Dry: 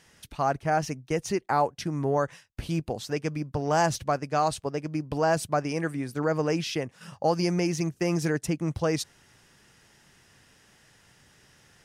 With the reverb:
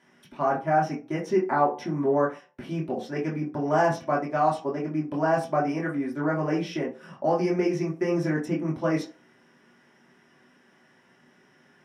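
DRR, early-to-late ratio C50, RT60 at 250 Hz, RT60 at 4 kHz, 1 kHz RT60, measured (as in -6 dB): -5.0 dB, 9.5 dB, 0.35 s, 0.20 s, 0.35 s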